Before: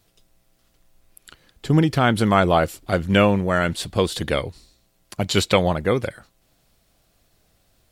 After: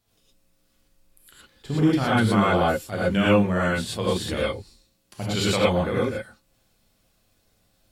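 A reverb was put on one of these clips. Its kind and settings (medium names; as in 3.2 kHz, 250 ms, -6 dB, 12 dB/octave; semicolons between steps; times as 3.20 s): gated-style reverb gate 140 ms rising, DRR -7.5 dB; trim -11 dB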